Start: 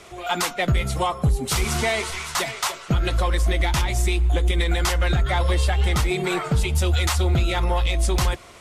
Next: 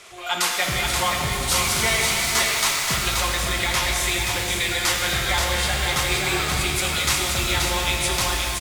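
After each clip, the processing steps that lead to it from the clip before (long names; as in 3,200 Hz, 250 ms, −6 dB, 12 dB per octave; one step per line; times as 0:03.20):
tilt shelving filter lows −7 dB, about 780 Hz
single-tap delay 528 ms −5 dB
reverb with rising layers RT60 3.2 s, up +12 semitones, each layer −8 dB, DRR −0.5 dB
level −4 dB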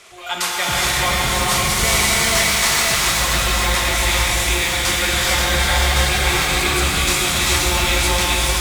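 reverb whose tail is shaped and stops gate 470 ms rising, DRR −3 dB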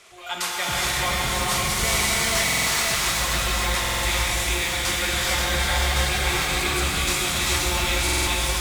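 buffer that repeats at 0:02.44/0:03.80/0:08.04, samples 2,048, times 4
level −5.5 dB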